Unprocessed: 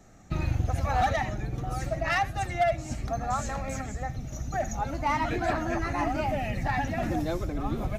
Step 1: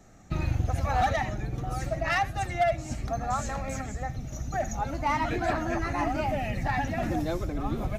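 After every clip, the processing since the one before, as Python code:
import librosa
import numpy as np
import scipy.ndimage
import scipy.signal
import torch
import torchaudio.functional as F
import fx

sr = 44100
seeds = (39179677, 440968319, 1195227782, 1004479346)

y = x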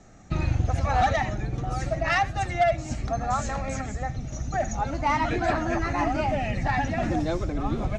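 y = scipy.signal.sosfilt(scipy.signal.butter(4, 7800.0, 'lowpass', fs=sr, output='sos'), x)
y = y * librosa.db_to_amplitude(3.0)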